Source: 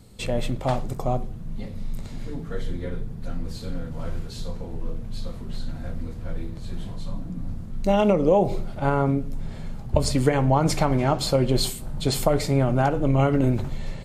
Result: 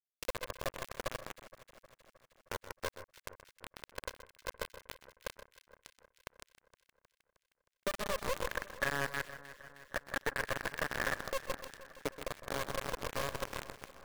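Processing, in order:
formant filter e
gate on every frequency bin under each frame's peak −20 dB strong
convolution reverb RT60 0.70 s, pre-delay 129 ms, DRR 7 dB
tube saturation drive 21 dB, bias 0.7
low-shelf EQ 150 Hz +5.5 dB
downward compressor 5 to 1, threshold −46 dBFS, peak gain reduction 21 dB
low-pass filter 3,400 Hz 12 dB per octave
bit reduction 7 bits
brickwall limiter −41 dBFS, peak gain reduction 11 dB
0:08.47–0:11.27: parametric band 1,700 Hz +13.5 dB 0.4 octaves
delay that swaps between a low-pass and a high-pass 156 ms, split 1,800 Hz, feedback 79%, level −14 dB
feedback echo at a low word length 126 ms, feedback 55%, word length 8 bits, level −12.5 dB
level +15 dB

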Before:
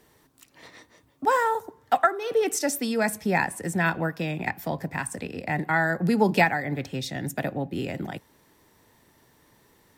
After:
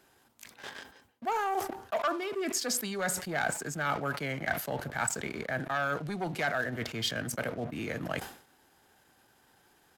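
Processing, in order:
parametric band 13,000 Hz −4.5 dB 2.6 octaves
leveller curve on the samples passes 2
reversed playback
downward compressor 10 to 1, threshold −30 dBFS, peak gain reduction 17.5 dB
reversed playback
low-shelf EQ 480 Hz −11.5 dB
pitch shifter −2.5 semitones
level that may fall only so fast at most 110 dB per second
level +4.5 dB

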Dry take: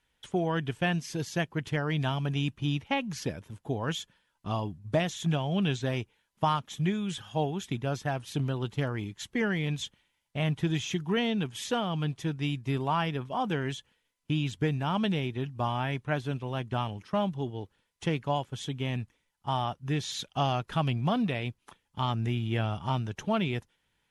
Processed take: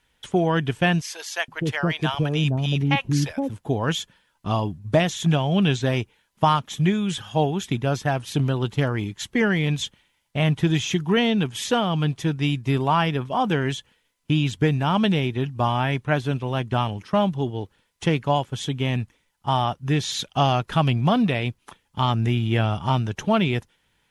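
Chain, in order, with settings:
0:01.01–0:03.49: multiband delay without the direct sound highs, lows 470 ms, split 630 Hz
level +8 dB

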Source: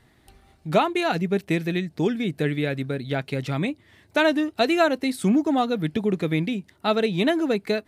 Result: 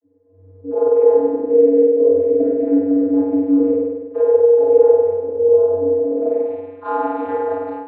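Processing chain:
every overlapping window played backwards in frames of 90 ms
spectral tilt −4.5 dB per octave
downward compressor, threshold −18 dBFS, peak gain reduction 9 dB
spring reverb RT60 1.5 s, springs 48 ms, chirp 25 ms, DRR −4 dB
ring modulation 150 Hz
channel vocoder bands 32, square 94.2 Hz
band-pass filter sweep 450 Hz → 1,200 Hz, 0:06.00–0:06.79
automatic gain control gain up to 15.5 dB
level −1 dB

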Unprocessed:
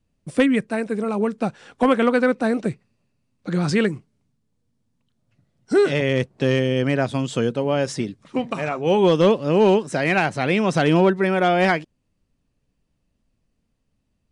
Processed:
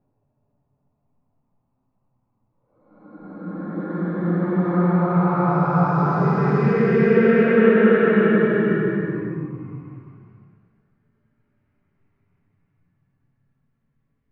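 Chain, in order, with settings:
spectral magnitudes quantised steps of 15 dB
auto-filter low-pass saw up 0.38 Hz 570–3,600 Hz
extreme stretch with random phases 11×, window 0.25 s, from 0:03.11
level +3 dB

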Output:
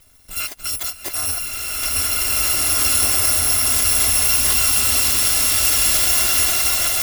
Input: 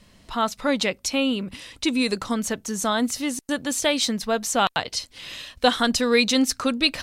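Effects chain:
samples in bit-reversed order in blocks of 256 samples
brickwall limiter −16 dBFS, peak gain reduction 10 dB
slow-attack reverb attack 2,150 ms, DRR −9 dB
level +1.5 dB

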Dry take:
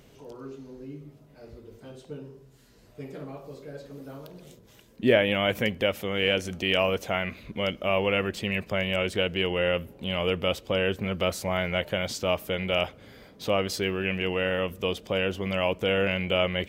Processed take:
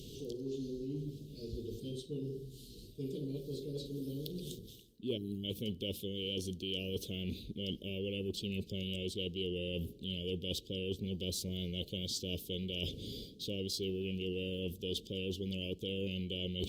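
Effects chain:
elliptic band-stop filter 420–3,300 Hz, stop band 40 dB
parametric band 3,900 Hz +5.5 dB 1.1 octaves
reversed playback
downward compressor 5 to 1, threshold −44 dBFS, peak gain reduction 23 dB
reversed playback
gain on a spectral selection 0:05.17–0:05.44, 470–3,800 Hz −29 dB
level +7 dB
Opus 48 kbit/s 48,000 Hz

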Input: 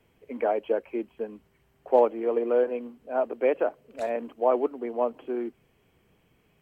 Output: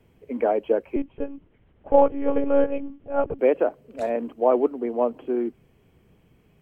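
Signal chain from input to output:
low-shelf EQ 460 Hz +9 dB
0:00.96–0:03.39: one-pitch LPC vocoder at 8 kHz 280 Hz

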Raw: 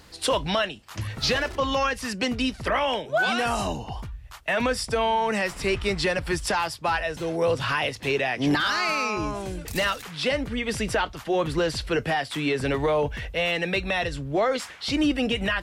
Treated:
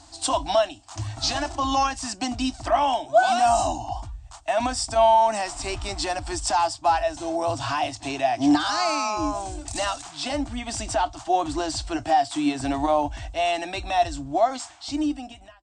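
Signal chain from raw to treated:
fade-out on the ending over 1.40 s
drawn EQ curve 120 Hz 0 dB, 170 Hz −19 dB, 300 Hz +6 dB, 470 Hz −20 dB, 690 Hz +11 dB, 1,300 Hz −2 dB, 2,000 Hz −8 dB, 8,400 Hz +11 dB, 12,000 Hz −27 dB
harmonic and percussive parts rebalanced harmonic +4 dB
level −3 dB

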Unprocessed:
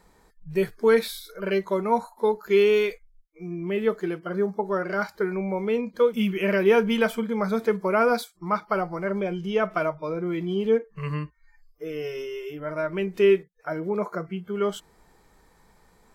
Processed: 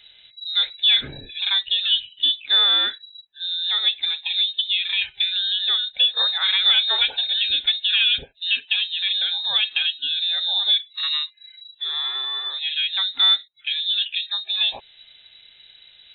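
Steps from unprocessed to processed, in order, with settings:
downward compressor 1.5 to 1, threshold −35 dBFS, peak gain reduction 7.5 dB
voice inversion scrambler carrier 3,900 Hz
level +8 dB

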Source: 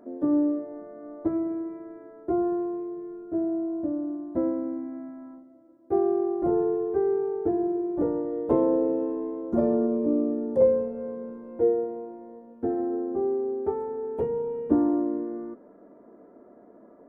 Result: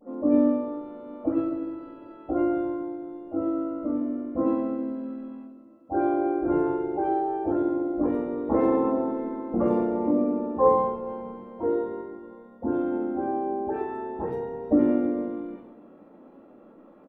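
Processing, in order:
parametric band 1,000 Hz −3.5 dB 2 octaves
hum removal 236.2 Hz, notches 3
all-pass dispersion highs, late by 148 ms, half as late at 980 Hz
pitch-shifted copies added −3 semitones −6 dB, +7 semitones −13 dB, +12 semitones −7 dB
rectangular room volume 2,900 cubic metres, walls furnished, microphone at 2.2 metres
level −2.5 dB

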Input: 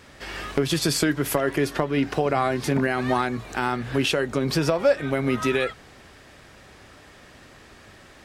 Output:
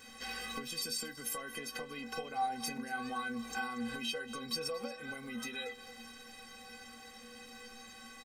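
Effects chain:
high-shelf EQ 2,800 Hz +8 dB
in parallel at +2 dB: brickwall limiter −14.5 dBFS, peak gain reduction 10 dB
on the sum: downward compressor 6 to 1, threshold −24 dBFS, peak gain reduction 14 dB
stiff-string resonator 230 Hz, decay 0.36 s, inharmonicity 0.03
surface crackle 28 per second −52 dBFS
on a send: single-tap delay 232 ms −17 dB
on the sum: level +2.5 dB

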